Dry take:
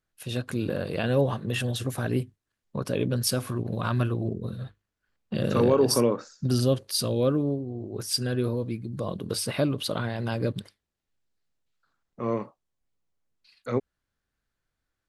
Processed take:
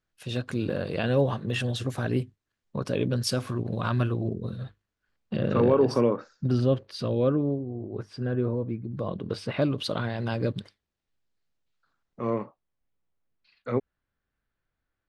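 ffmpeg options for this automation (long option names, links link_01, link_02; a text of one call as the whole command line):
ffmpeg -i in.wav -af "asetnsamples=nb_out_samples=441:pad=0,asendcmd='5.36 lowpass f 2600;8.01 lowpass f 1500;8.92 lowpass f 2900;9.62 lowpass f 6100;12.3 lowpass f 3000',lowpass=6800" out.wav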